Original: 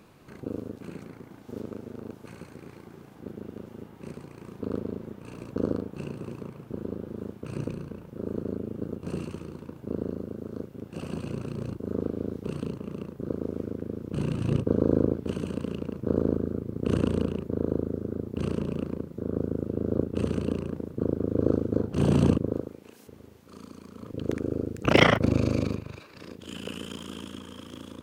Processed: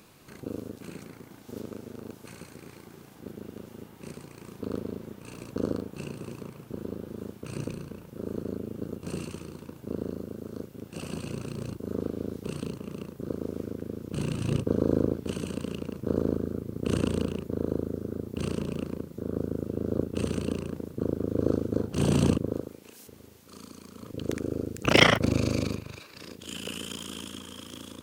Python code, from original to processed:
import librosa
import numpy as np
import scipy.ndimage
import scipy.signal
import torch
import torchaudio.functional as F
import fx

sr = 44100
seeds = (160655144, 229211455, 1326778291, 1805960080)

y = fx.high_shelf(x, sr, hz=3000.0, db=11.5)
y = y * librosa.db_to_amplitude(-2.0)